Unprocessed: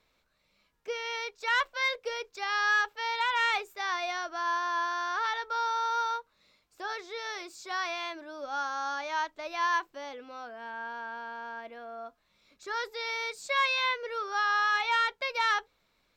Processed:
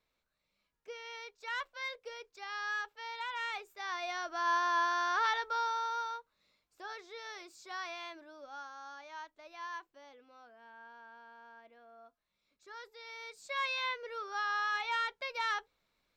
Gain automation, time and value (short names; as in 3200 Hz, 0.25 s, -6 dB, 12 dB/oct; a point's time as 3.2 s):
3.54 s -11 dB
4.56 s 0 dB
5.31 s 0 dB
6.12 s -8.5 dB
8.16 s -8.5 dB
8.74 s -15 dB
13.03 s -15 dB
13.71 s -7 dB